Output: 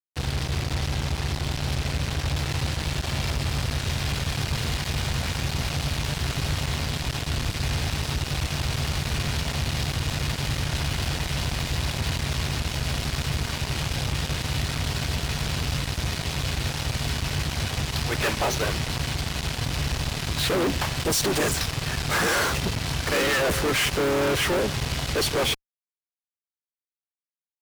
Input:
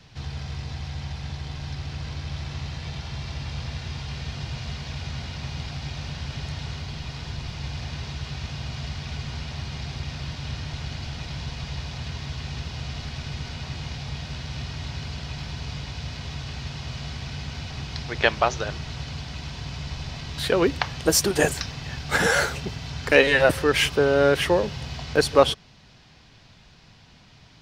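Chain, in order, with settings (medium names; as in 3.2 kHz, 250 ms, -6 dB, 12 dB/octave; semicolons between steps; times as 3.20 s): harmony voices -7 st -12 dB, -5 st -8 dB; fuzz box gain 36 dB, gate -35 dBFS; trim -8 dB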